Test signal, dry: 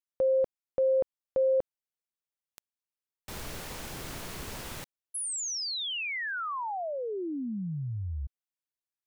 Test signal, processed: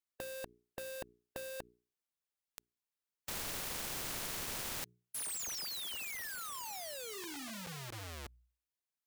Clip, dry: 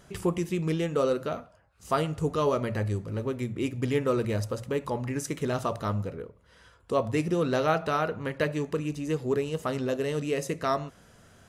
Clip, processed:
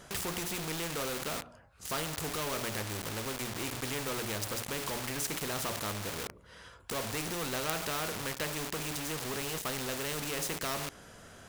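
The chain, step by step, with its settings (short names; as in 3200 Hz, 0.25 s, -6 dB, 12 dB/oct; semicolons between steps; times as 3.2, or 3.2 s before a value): notches 60/120/180/240/300/360/420 Hz; in parallel at -5 dB: companded quantiser 2-bit; on the sum: spectral compressor 2:1; gain -2 dB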